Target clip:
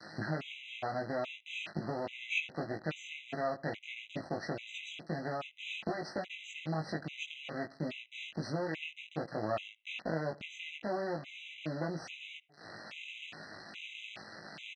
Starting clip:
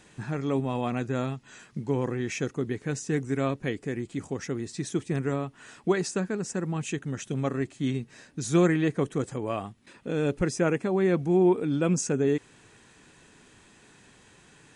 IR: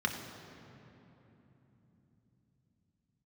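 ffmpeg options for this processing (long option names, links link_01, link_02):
-filter_complex "[0:a]adynamicequalizer=threshold=0.00794:dfrequency=680:dqfactor=2:tfrequency=680:tqfactor=2:attack=5:release=100:ratio=0.375:range=3:mode=boostabove:tftype=bell,acompressor=threshold=-39dB:ratio=20,acrusher=bits=6:dc=4:mix=0:aa=0.000001,highpass=170,equalizer=frequency=260:width_type=q:width=4:gain=-5,equalizer=frequency=420:width_type=q:width=4:gain=-9,equalizer=frequency=650:width_type=q:width=4:gain=4,equalizer=frequency=1000:width_type=q:width=4:gain=-7,equalizer=frequency=2700:width_type=q:width=4:gain=9,lowpass=frequency=4600:width=0.5412,lowpass=frequency=4600:width=1.3066,asplit=2[link_01][link_02];[link_02]adelay=19,volume=-3dB[link_03];[link_01][link_03]amix=inputs=2:normalize=0,asplit=2[link_04][link_05];[link_05]adelay=74,lowpass=frequency=1900:poles=1,volume=-21dB,asplit=2[link_06][link_07];[link_07]adelay=74,lowpass=frequency=1900:poles=1,volume=0.53,asplit=2[link_08][link_09];[link_09]adelay=74,lowpass=frequency=1900:poles=1,volume=0.53,asplit=2[link_10][link_11];[link_11]adelay=74,lowpass=frequency=1900:poles=1,volume=0.53[link_12];[link_04][link_06][link_08][link_10][link_12]amix=inputs=5:normalize=0,afftfilt=real='re*gt(sin(2*PI*1.2*pts/sr)*(1-2*mod(floor(b*sr/1024/2000),2)),0)':imag='im*gt(sin(2*PI*1.2*pts/sr)*(1-2*mod(floor(b*sr/1024/2000),2)),0)':win_size=1024:overlap=0.75,volume=12dB"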